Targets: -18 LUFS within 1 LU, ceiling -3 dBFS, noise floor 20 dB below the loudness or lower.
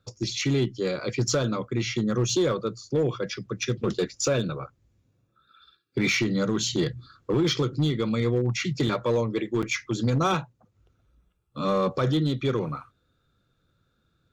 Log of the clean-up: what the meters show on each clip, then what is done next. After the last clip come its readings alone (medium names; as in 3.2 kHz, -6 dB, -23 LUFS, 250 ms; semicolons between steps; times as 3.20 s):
clipped samples 1.0%; clipping level -17.5 dBFS; dropouts 1; longest dropout 7.2 ms; loudness -26.5 LUFS; peak level -17.5 dBFS; loudness target -18.0 LUFS
-> clip repair -17.5 dBFS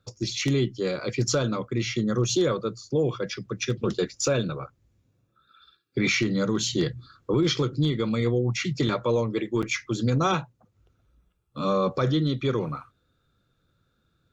clipped samples 0.0%; dropouts 1; longest dropout 7.2 ms
-> interpolate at 9.62 s, 7.2 ms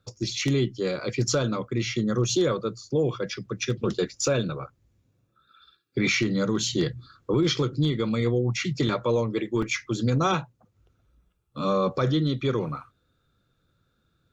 dropouts 0; loudness -26.0 LUFS; peak level -9.0 dBFS; loudness target -18.0 LUFS
-> trim +8 dB; peak limiter -3 dBFS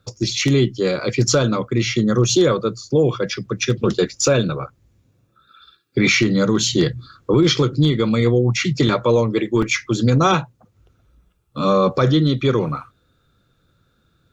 loudness -18.0 LUFS; peak level -3.0 dBFS; noise floor -63 dBFS